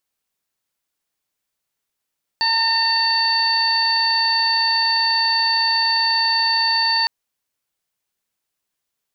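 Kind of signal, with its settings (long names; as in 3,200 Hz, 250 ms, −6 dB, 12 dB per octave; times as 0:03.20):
steady harmonic partials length 4.66 s, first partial 907 Hz, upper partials −1.5/−9/−15/5 dB, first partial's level −22 dB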